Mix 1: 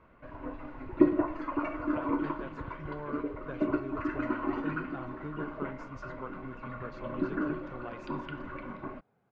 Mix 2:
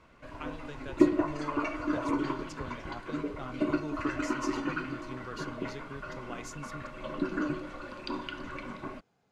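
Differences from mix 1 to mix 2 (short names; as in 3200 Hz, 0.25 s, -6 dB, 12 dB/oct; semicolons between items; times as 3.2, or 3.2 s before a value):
speech: entry -1.55 s; master: remove LPF 1800 Hz 12 dB/oct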